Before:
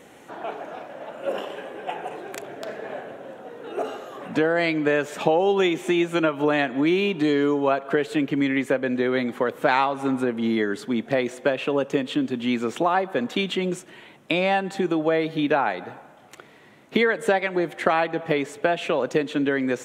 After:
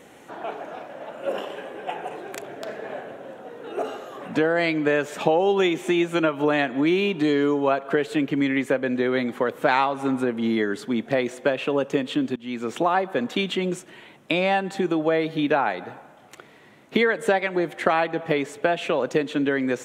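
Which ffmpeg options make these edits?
ffmpeg -i in.wav -filter_complex "[0:a]asplit=2[link_01][link_02];[link_01]atrim=end=12.36,asetpts=PTS-STARTPTS,afade=type=out:start_time=12.356:duration=0.004:curve=hsin:silence=0.0891251[link_03];[link_02]atrim=start=12.36,asetpts=PTS-STARTPTS,afade=type=in:duration=0.41:silence=0.0891251[link_04];[link_03][link_04]concat=n=2:v=0:a=1" out.wav

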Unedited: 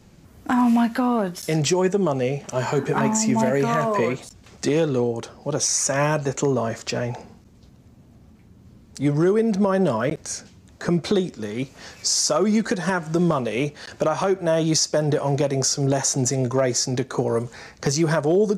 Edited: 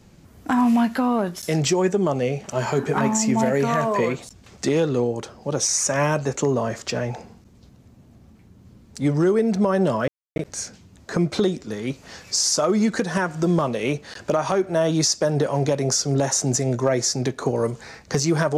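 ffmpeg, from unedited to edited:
ffmpeg -i in.wav -filter_complex "[0:a]asplit=2[link_01][link_02];[link_01]atrim=end=10.08,asetpts=PTS-STARTPTS,afade=type=out:start_time=10.076:duration=0.004:curve=hsin,apad=pad_dur=0.28[link_03];[link_02]atrim=start=10.08,asetpts=PTS-STARTPTS,afade=type=in:duration=0.004:curve=hsin[link_04];[link_03][link_04]concat=n=2:v=0:a=1" out.wav

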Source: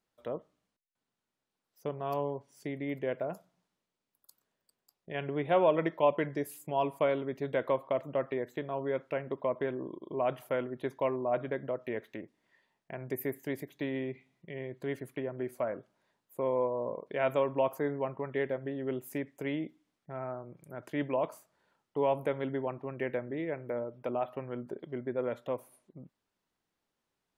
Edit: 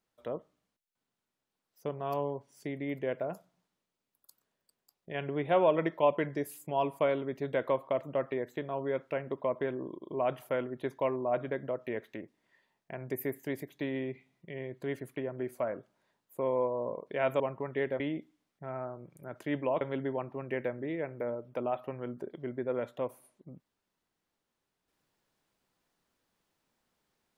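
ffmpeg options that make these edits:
ffmpeg -i in.wav -filter_complex "[0:a]asplit=4[link_01][link_02][link_03][link_04];[link_01]atrim=end=17.402[link_05];[link_02]atrim=start=17.988:end=18.592[link_06];[link_03]atrim=start=19.468:end=21.282[link_07];[link_04]atrim=start=22.298[link_08];[link_05][link_06]acrossfade=duration=0.004:curve1=hsin:curve2=hsin[link_09];[link_09][link_07]acrossfade=duration=0.004:curve1=hsin:curve2=hsin[link_10];[link_10][link_08]acrossfade=duration=0.004:curve1=hsin:curve2=hsin" out.wav

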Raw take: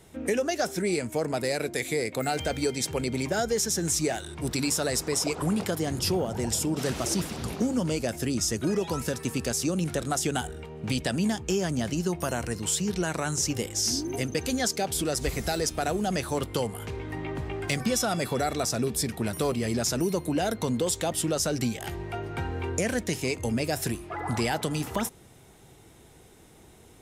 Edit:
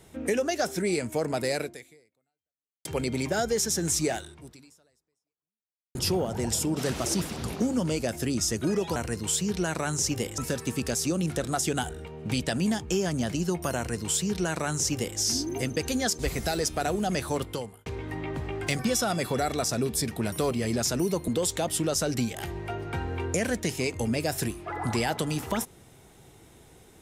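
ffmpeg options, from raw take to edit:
ffmpeg -i in.wav -filter_complex "[0:a]asplit=8[link_01][link_02][link_03][link_04][link_05][link_06][link_07][link_08];[link_01]atrim=end=2.85,asetpts=PTS-STARTPTS,afade=type=out:start_time=1.6:duration=1.25:curve=exp[link_09];[link_02]atrim=start=2.85:end=5.95,asetpts=PTS-STARTPTS,afade=type=in:duration=0.004:curve=hsin,afade=type=out:start_time=1.32:duration=1.78:curve=exp[link_10];[link_03]atrim=start=5.95:end=8.962,asetpts=PTS-STARTPTS,afade=type=in:duration=0.004:curve=hsin[link_11];[link_04]atrim=start=12.348:end=13.772[link_12];[link_05]atrim=start=8.958:end=14.772[link_13];[link_06]atrim=start=15.198:end=16.87,asetpts=PTS-STARTPTS,afade=type=out:start_time=1.152:duration=0.52[link_14];[link_07]atrim=start=16.87:end=20.292,asetpts=PTS-STARTPTS,afade=type=in:duration=0.004:curve=hsin[link_15];[link_08]atrim=start=20.718[link_16];[link_09][link_10][link_11]concat=n=3:v=0:a=1[link_17];[link_17][link_12]acrossfade=duration=0.004:curve1=hsin:curve2=hsin[link_18];[link_18][link_13]acrossfade=duration=0.004:curve1=hsin:curve2=hsin[link_19];[link_14][link_15]concat=n=2:v=0:a=1[link_20];[link_19][link_20]acrossfade=duration=0.004:curve1=hsin:curve2=hsin[link_21];[link_21][link_16]acrossfade=duration=0.004:curve1=hsin:curve2=hsin" out.wav

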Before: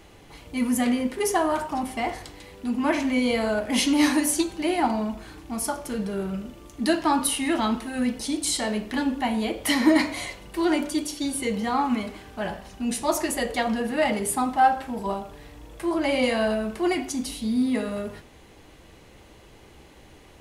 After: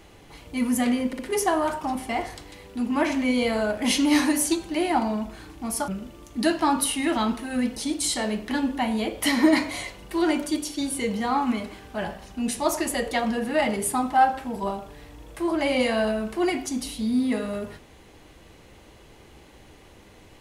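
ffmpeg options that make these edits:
ffmpeg -i in.wav -filter_complex "[0:a]asplit=4[link_01][link_02][link_03][link_04];[link_01]atrim=end=1.132[link_05];[link_02]atrim=start=1.068:end=1.132[link_06];[link_03]atrim=start=1.068:end=5.762[link_07];[link_04]atrim=start=6.308[link_08];[link_05][link_06]acrossfade=duration=0.004:curve1=hsin:curve2=hsin[link_09];[link_09][link_07]acrossfade=duration=0.004:curve1=hsin:curve2=hsin[link_10];[link_10][link_08]acrossfade=duration=0.004:curve1=hsin:curve2=hsin" out.wav

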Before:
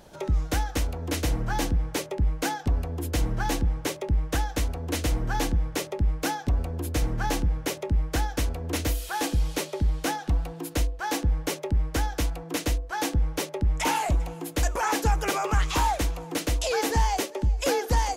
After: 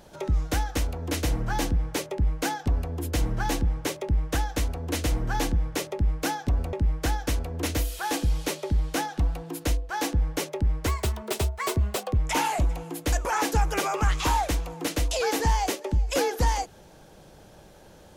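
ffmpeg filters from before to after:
ffmpeg -i in.wav -filter_complex "[0:a]asplit=4[link_01][link_02][link_03][link_04];[link_01]atrim=end=6.732[link_05];[link_02]atrim=start=7.828:end=11.974[link_06];[link_03]atrim=start=11.97:end=13.68,asetpts=PTS-STARTPTS,asetrate=57771,aresample=44100[link_07];[link_04]atrim=start=13.676[link_08];[link_05][link_06]acrossfade=duration=0.004:curve1=hsin:curve2=hsin[link_09];[link_09][link_07]acrossfade=duration=0.004:curve1=hsin:curve2=hsin[link_10];[link_10][link_08]acrossfade=duration=0.004:curve1=hsin:curve2=hsin" out.wav

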